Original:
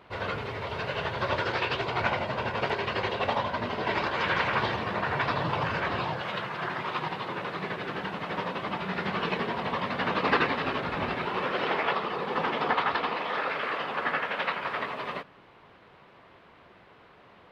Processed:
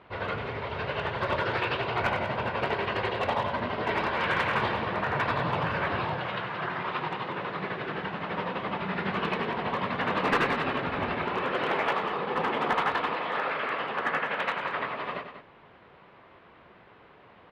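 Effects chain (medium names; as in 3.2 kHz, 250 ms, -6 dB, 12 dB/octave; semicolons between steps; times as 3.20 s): low-pass 3.5 kHz 12 dB/octave; one-sided clip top -20.5 dBFS; loudspeakers at several distances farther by 33 m -11 dB, 66 m -11 dB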